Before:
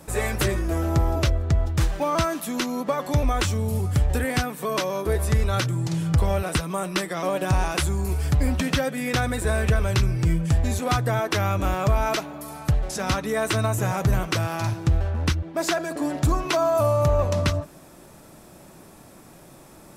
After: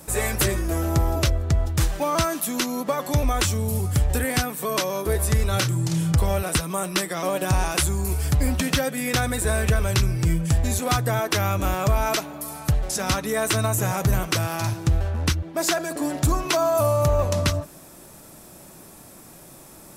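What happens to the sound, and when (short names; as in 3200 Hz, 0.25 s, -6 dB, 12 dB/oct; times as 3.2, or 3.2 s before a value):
5.46–6.12 doubler 31 ms -8 dB
whole clip: high shelf 5900 Hz +10 dB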